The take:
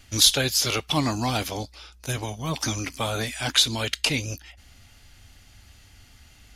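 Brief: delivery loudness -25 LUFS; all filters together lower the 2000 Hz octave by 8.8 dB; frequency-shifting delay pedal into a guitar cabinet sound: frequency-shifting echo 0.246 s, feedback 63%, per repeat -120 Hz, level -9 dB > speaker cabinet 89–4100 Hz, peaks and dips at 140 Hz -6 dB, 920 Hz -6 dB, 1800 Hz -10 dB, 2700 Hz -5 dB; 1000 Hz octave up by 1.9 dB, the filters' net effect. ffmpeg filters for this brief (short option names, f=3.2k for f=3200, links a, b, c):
-filter_complex "[0:a]equalizer=f=1k:t=o:g=8.5,equalizer=f=2k:t=o:g=-8,asplit=9[a][b][c][d][e][f][g][h][i];[b]adelay=246,afreqshift=-120,volume=-9dB[j];[c]adelay=492,afreqshift=-240,volume=-13dB[k];[d]adelay=738,afreqshift=-360,volume=-17dB[l];[e]adelay=984,afreqshift=-480,volume=-21dB[m];[f]adelay=1230,afreqshift=-600,volume=-25.1dB[n];[g]adelay=1476,afreqshift=-720,volume=-29.1dB[o];[h]adelay=1722,afreqshift=-840,volume=-33.1dB[p];[i]adelay=1968,afreqshift=-960,volume=-37.1dB[q];[a][j][k][l][m][n][o][p][q]amix=inputs=9:normalize=0,highpass=89,equalizer=f=140:t=q:w=4:g=-6,equalizer=f=920:t=q:w=4:g=-6,equalizer=f=1.8k:t=q:w=4:g=-10,equalizer=f=2.7k:t=q:w=4:g=-5,lowpass=f=4.1k:w=0.5412,lowpass=f=4.1k:w=1.3066,volume=2.5dB"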